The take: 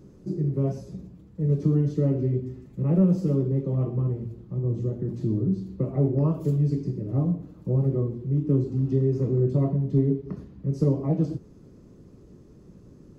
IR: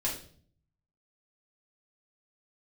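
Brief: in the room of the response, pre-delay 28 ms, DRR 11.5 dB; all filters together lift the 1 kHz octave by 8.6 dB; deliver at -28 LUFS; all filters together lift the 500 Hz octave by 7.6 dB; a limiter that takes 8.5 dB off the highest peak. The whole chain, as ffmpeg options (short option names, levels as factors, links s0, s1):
-filter_complex "[0:a]equalizer=f=500:t=o:g=8.5,equalizer=f=1000:t=o:g=8,alimiter=limit=0.188:level=0:latency=1,asplit=2[s0][s1];[1:a]atrim=start_sample=2205,adelay=28[s2];[s1][s2]afir=irnorm=-1:irlink=0,volume=0.141[s3];[s0][s3]amix=inputs=2:normalize=0,volume=0.668"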